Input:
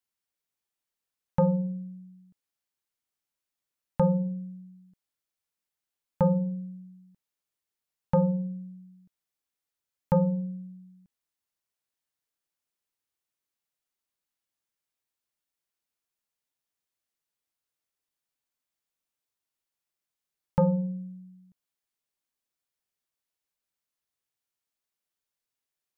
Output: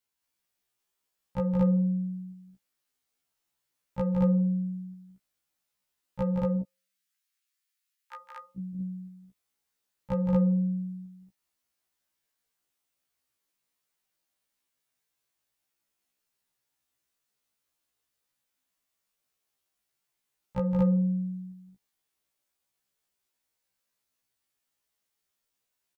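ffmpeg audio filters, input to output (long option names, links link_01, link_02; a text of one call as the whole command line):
ffmpeg -i in.wav -filter_complex "[0:a]asettb=1/sr,asplit=3[link_01][link_02][link_03];[link_01]atrim=end=6.394[link_04];[link_02]atrim=start=6.39:end=8.58,asetpts=PTS-STARTPTS,afade=type=in:duration=0.004:curve=qsin,afade=type=out:start_time=2.186:duration=0.004:curve=qsin,highpass=frequency=1400:width=0.5412,highpass=frequency=1400:width=1.3066[link_05];[link_03]atrim=start=8.576[link_06];[link_04][link_05]acrossfade=duration=0.004:curve1=hsin:curve2=qsin[link_07];[link_07][link_06]acrossfade=duration=0.004:curve1=qsin:curve2=hsin,acompressor=threshold=-31dB:ratio=2.5,asoftclip=type=tanh:threshold=-20dB,aecho=1:1:169.1|227.4:0.562|0.891,afftfilt=real='re*1.73*eq(mod(b,3),0)':imag='im*1.73*eq(mod(b,3),0)':win_size=2048:overlap=0.75,volume=5dB" out.wav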